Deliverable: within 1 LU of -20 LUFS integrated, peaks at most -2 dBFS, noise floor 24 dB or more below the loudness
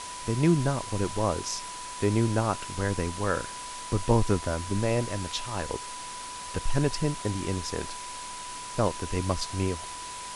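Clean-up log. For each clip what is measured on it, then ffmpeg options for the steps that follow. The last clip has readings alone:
steady tone 990 Hz; tone level -39 dBFS; noise floor -39 dBFS; noise floor target -54 dBFS; loudness -29.5 LUFS; peak -8.5 dBFS; loudness target -20.0 LUFS
-> -af "bandreject=f=990:w=30"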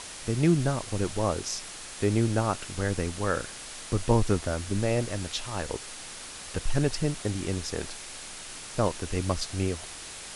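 steady tone none; noise floor -42 dBFS; noise floor target -54 dBFS
-> -af "afftdn=nr=12:nf=-42"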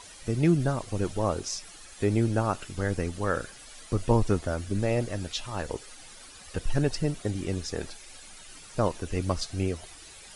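noise floor -48 dBFS; noise floor target -54 dBFS
-> -af "afftdn=nr=6:nf=-48"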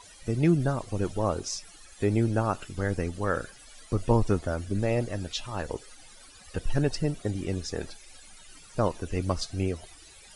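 noise floor -51 dBFS; noise floor target -54 dBFS
-> -af "afftdn=nr=6:nf=-51"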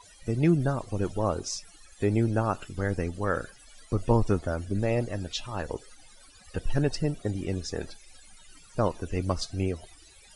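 noise floor -54 dBFS; loudness -29.5 LUFS; peak -9.5 dBFS; loudness target -20.0 LUFS
-> -af "volume=9.5dB,alimiter=limit=-2dB:level=0:latency=1"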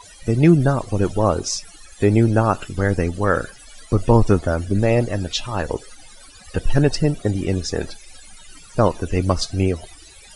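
loudness -20.0 LUFS; peak -2.0 dBFS; noise floor -45 dBFS

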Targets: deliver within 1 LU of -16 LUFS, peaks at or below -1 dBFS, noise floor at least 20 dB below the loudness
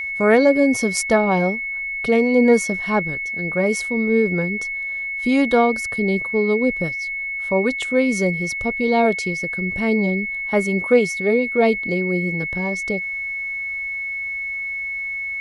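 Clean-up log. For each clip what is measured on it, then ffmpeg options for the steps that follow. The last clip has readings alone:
steady tone 2200 Hz; tone level -24 dBFS; loudness -20.0 LUFS; peak -1.5 dBFS; loudness target -16.0 LUFS
-> -af "bandreject=f=2.2k:w=30"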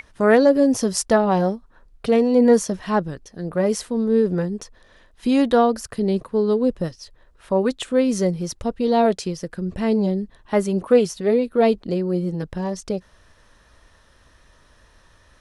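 steady tone none; loudness -20.5 LUFS; peak -2.0 dBFS; loudness target -16.0 LUFS
-> -af "volume=4.5dB,alimiter=limit=-1dB:level=0:latency=1"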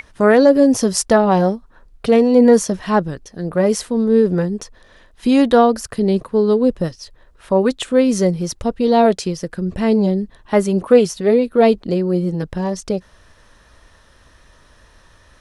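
loudness -16.0 LUFS; peak -1.0 dBFS; noise floor -51 dBFS

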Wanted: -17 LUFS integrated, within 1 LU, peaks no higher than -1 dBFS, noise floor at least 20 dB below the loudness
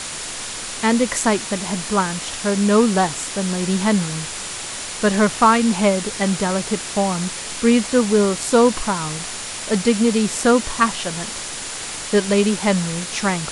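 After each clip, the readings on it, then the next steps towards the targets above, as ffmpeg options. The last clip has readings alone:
steady tone 7100 Hz; tone level -39 dBFS; noise floor -30 dBFS; noise floor target -40 dBFS; loudness -19.5 LUFS; peak -2.0 dBFS; loudness target -17.0 LUFS
-> -af "bandreject=f=7.1k:w=30"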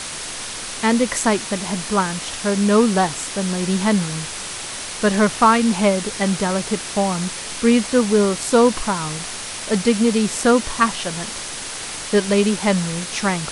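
steady tone none; noise floor -30 dBFS; noise floor target -40 dBFS
-> -af "afftdn=nr=10:nf=-30"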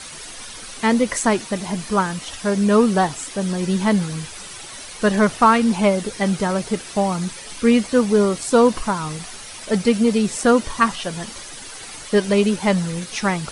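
noise floor -36 dBFS; noise floor target -40 dBFS
-> -af "afftdn=nr=6:nf=-36"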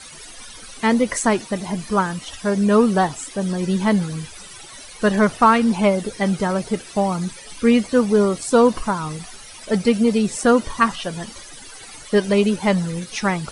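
noise floor -40 dBFS; loudness -19.5 LUFS; peak -2.5 dBFS; loudness target -17.0 LUFS
-> -af "volume=2.5dB,alimiter=limit=-1dB:level=0:latency=1"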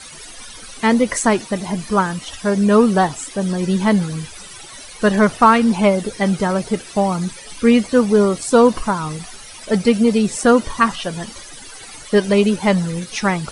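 loudness -17.0 LUFS; peak -1.0 dBFS; noise floor -37 dBFS

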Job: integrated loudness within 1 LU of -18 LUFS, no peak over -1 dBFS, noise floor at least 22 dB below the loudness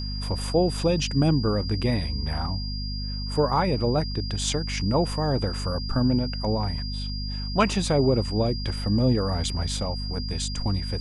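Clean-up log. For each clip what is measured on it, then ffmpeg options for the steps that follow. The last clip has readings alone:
hum 50 Hz; harmonics up to 250 Hz; hum level -28 dBFS; steady tone 4800 Hz; tone level -35 dBFS; loudness -25.5 LUFS; peak -8.0 dBFS; loudness target -18.0 LUFS
-> -af "bandreject=f=50:t=h:w=4,bandreject=f=100:t=h:w=4,bandreject=f=150:t=h:w=4,bandreject=f=200:t=h:w=4,bandreject=f=250:t=h:w=4"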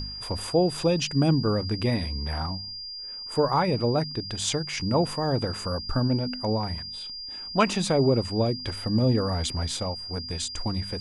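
hum none; steady tone 4800 Hz; tone level -35 dBFS
-> -af "bandreject=f=4.8k:w=30"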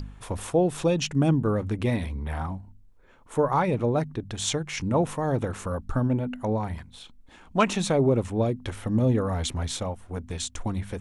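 steady tone none; loudness -27.0 LUFS; peak -8.0 dBFS; loudness target -18.0 LUFS
-> -af "volume=9dB,alimiter=limit=-1dB:level=0:latency=1"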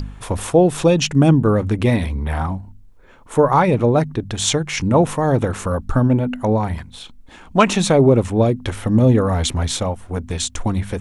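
loudness -18.0 LUFS; peak -1.0 dBFS; noise floor -43 dBFS

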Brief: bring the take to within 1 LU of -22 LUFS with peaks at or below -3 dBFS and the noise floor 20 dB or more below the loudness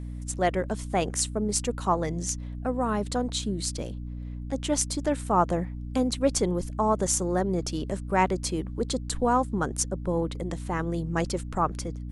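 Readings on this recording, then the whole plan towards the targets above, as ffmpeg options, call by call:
hum 60 Hz; harmonics up to 300 Hz; hum level -33 dBFS; loudness -28.0 LUFS; peak -5.5 dBFS; loudness target -22.0 LUFS
-> -af "bandreject=f=60:t=h:w=6,bandreject=f=120:t=h:w=6,bandreject=f=180:t=h:w=6,bandreject=f=240:t=h:w=6,bandreject=f=300:t=h:w=6"
-af "volume=6dB,alimiter=limit=-3dB:level=0:latency=1"

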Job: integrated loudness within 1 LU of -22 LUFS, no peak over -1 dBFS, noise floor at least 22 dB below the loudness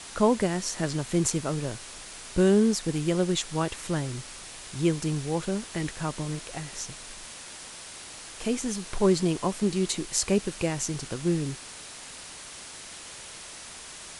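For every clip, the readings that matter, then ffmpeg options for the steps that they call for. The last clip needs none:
noise floor -43 dBFS; noise floor target -50 dBFS; loudness -28.0 LUFS; peak -7.0 dBFS; loudness target -22.0 LUFS
-> -af "afftdn=nr=7:nf=-43"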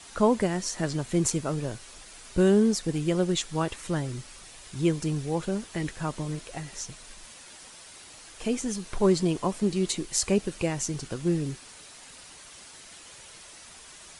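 noise floor -48 dBFS; noise floor target -50 dBFS
-> -af "afftdn=nr=6:nf=-48"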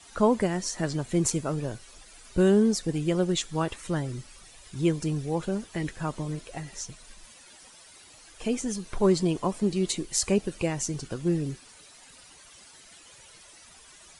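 noise floor -52 dBFS; loudness -28.0 LUFS; peak -7.5 dBFS; loudness target -22.0 LUFS
-> -af "volume=6dB"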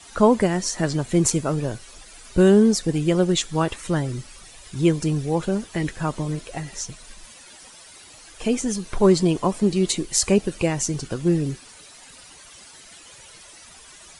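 loudness -22.0 LUFS; peak -1.5 dBFS; noise floor -46 dBFS

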